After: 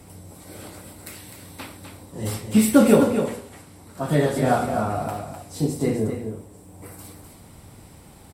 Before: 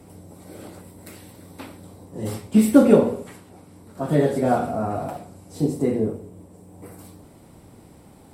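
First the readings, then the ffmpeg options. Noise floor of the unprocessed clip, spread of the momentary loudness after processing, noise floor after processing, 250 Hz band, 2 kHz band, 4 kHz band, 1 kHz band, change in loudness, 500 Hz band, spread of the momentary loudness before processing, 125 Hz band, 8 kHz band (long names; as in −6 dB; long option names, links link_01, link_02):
−49 dBFS, 24 LU, −47 dBFS, −1.0 dB, +5.0 dB, +6.0 dB, +1.5 dB, −1.0 dB, −1.0 dB, 20 LU, +1.5 dB, +6.5 dB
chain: -af "equalizer=frequency=340:width=0.4:gain=-8.5,aecho=1:1:253:0.422,volume=6dB"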